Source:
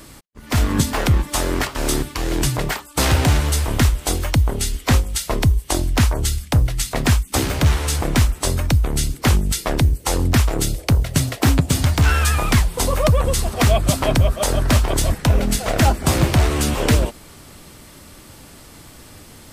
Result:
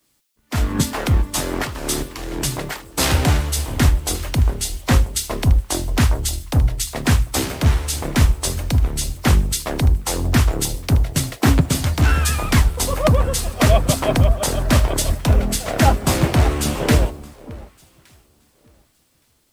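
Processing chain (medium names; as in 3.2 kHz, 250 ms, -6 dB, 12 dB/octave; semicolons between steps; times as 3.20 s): echo whose repeats swap between lows and highs 584 ms, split 1 kHz, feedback 57%, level -9.5 dB; word length cut 8-bit, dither triangular; three bands expanded up and down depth 100%; trim -1 dB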